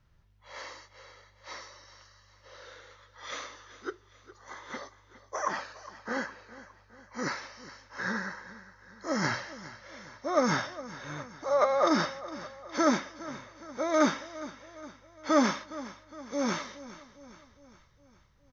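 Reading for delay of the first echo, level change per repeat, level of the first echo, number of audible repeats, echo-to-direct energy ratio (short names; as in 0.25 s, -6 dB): 0.411 s, -5.5 dB, -16.5 dB, 4, -15.0 dB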